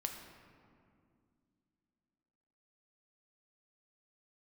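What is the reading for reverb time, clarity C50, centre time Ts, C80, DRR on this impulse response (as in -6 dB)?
2.3 s, 5.5 dB, 46 ms, 6.5 dB, 3.0 dB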